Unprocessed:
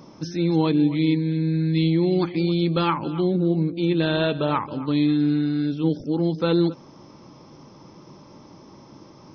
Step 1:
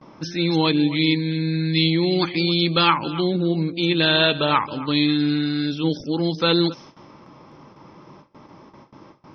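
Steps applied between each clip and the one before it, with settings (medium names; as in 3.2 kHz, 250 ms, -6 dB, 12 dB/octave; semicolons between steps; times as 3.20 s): level-controlled noise filter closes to 1.6 kHz, open at -17 dBFS; gate with hold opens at -38 dBFS; tilt shelf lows -7.5 dB, about 1.3 kHz; trim +6.5 dB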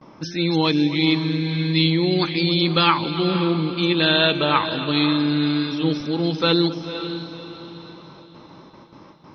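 echo that smears into a reverb 521 ms, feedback 40%, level -10 dB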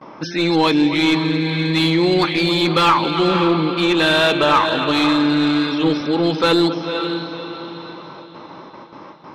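overdrive pedal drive 19 dB, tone 1.5 kHz, clips at -3 dBFS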